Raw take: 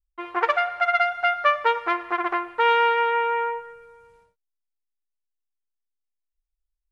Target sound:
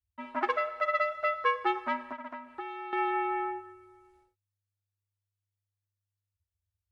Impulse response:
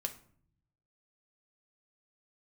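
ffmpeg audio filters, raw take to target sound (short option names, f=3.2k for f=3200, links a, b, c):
-filter_complex "[0:a]asettb=1/sr,asplit=3[a][b][c];[a]atrim=end=2.114[d];[b]atrim=start=2.11:end=2.93,asetpts=PTS-STARTPTS,afade=t=in:d=0.004:c=qsin,afade=t=out:st=0.816:d=0.004:c=qsin,acompressor=threshold=-30dB:ratio=6[e];[c]atrim=start=2.926[f];[d][e]acrossfade=d=0.004:c1=hsin:c2=qsin[g];[g][f]acrossfade=d=0.004:c1=qsin:c2=hsin,afreqshift=-100,volume=-7.5dB"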